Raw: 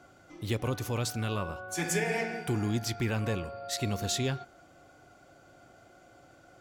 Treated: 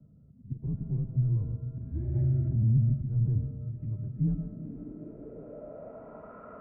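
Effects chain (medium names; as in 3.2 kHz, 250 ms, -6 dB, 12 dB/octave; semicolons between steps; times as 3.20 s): 3.67–4.14 s: tilt EQ +3.5 dB/octave; slow attack 193 ms; mistuned SSB -96 Hz 180–2700 Hz; saturation -29.5 dBFS, distortion -12 dB; echo that smears into a reverb 469 ms, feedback 59%, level -13.5 dB; on a send at -9 dB: reverberation RT60 0.50 s, pre-delay 119 ms; on the sum: low-pass sweep 130 Hz -> 1.1 kHz, 4.06–6.35 s; 2.15–2.94 s: level flattener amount 50%; trim +7.5 dB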